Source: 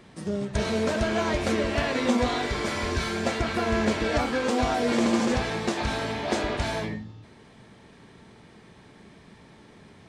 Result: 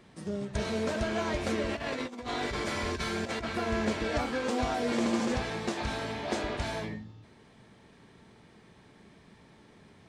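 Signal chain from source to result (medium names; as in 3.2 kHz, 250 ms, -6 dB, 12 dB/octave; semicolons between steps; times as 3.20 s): 1.69–3.44 s: compressor with a negative ratio -28 dBFS, ratio -0.5; trim -5.5 dB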